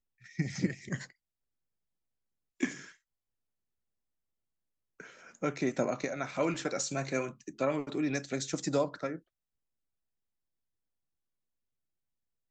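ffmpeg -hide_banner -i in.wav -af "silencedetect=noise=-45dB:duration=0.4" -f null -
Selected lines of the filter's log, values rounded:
silence_start: 1.10
silence_end: 2.60 | silence_duration: 1.50
silence_start: 2.90
silence_end: 5.00 | silence_duration: 2.10
silence_start: 9.18
silence_end: 12.50 | silence_duration: 3.32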